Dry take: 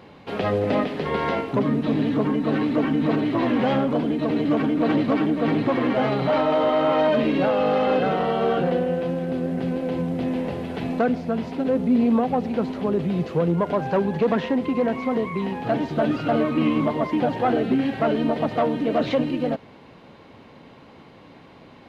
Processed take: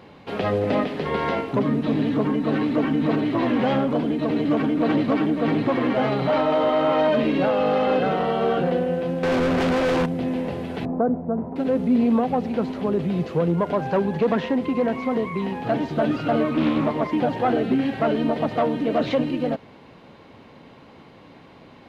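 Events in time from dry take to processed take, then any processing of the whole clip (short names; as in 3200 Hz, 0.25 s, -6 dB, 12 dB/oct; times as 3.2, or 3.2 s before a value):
9.23–10.06 overdrive pedal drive 32 dB, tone 3300 Hz, clips at -14.5 dBFS
10.85–11.56 LPF 1100 Hz 24 dB/oct
16.54–17.12 Doppler distortion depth 0.29 ms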